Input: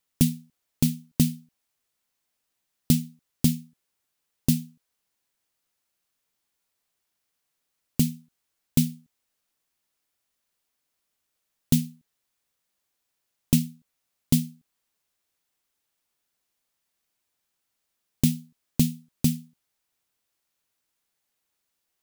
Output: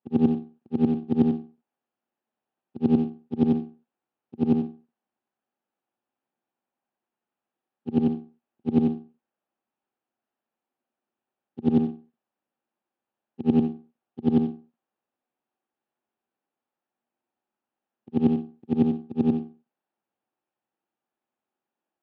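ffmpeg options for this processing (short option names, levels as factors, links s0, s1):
-af "afftfilt=real='re':imag='-im':win_size=8192:overlap=0.75,aeval=exprs='max(val(0),0)':c=same,highpass=f=110:w=0.5412,highpass=f=110:w=1.3066,equalizer=f=150:t=q:w=4:g=-3,equalizer=f=230:t=q:w=4:g=10,equalizer=f=350:t=q:w=4:g=8,equalizer=f=550:t=q:w=4:g=4,equalizer=f=790:t=q:w=4:g=9,equalizer=f=2100:t=q:w=4:g=-8,lowpass=f=2500:w=0.5412,lowpass=f=2500:w=1.3066,volume=1.88"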